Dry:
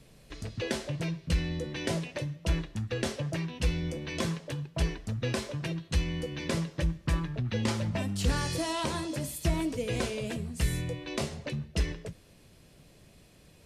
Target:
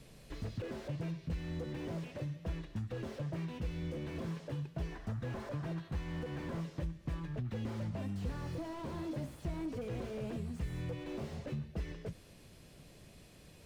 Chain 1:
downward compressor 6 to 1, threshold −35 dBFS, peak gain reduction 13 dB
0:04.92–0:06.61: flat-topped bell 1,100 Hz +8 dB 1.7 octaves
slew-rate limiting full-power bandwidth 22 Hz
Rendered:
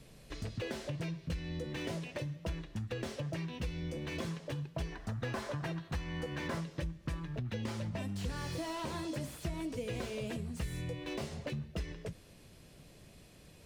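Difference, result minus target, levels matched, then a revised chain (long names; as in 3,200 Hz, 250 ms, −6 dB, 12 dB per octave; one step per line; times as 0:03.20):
slew-rate limiting: distortion −7 dB
downward compressor 6 to 1, threshold −35 dBFS, peak gain reduction 13 dB
0:04.92–0:06.61: flat-topped bell 1,100 Hz +8 dB 1.7 octaves
slew-rate limiting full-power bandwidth 6 Hz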